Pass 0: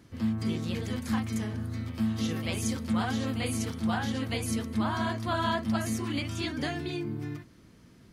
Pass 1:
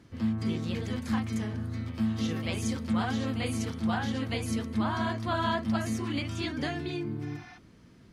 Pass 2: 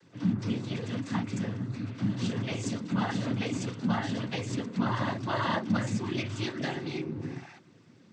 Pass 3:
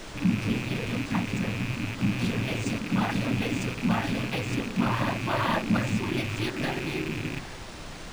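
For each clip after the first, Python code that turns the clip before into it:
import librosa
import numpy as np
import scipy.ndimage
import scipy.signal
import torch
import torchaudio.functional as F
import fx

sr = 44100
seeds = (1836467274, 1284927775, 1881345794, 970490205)

y1 = fx.spec_repair(x, sr, seeds[0], start_s=7.28, length_s=0.27, low_hz=620.0, high_hz=6500.0, source='before')
y1 = fx.high_shelf(y1, sr, hz=9600.0, db=-11.5)
y2 = fx.noise_vocoder(y1, sr, seeds[1], bands=16)
y3 = fx.rattle_buzz(y2, sr, strikes_db=-40.0, level_db=-27.0)
y3 = fx.dmg_noise_colour(y3, sr, seeds[2], colour='pink', level_db=-43.0)
y3 = np.interp(np.arange(len(y3)), np.arange(len(y3))[::3], y3[::3])
y3 = y3 * librosa.db_to_amplitude(3.0)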